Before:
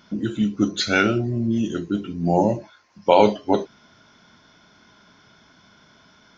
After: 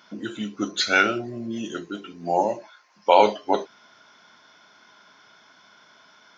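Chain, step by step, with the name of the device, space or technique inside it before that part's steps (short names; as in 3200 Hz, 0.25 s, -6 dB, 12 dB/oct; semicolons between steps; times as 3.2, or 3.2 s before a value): 1.9–3.14 low shelf 200 Hz -8 dB; filter by subtraction (in parallel: LPF 940 Hz 12 dB/oct + phase invert)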